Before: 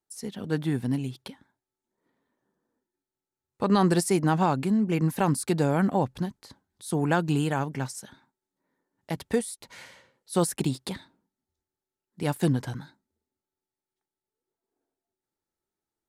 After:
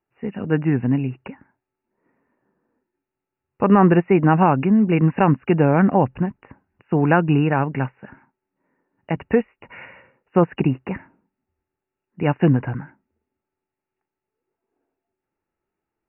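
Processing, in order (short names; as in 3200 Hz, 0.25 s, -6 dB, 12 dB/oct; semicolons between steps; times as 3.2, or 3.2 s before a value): brick-wall FIR low-pass 2900 Hz; gain +8 dB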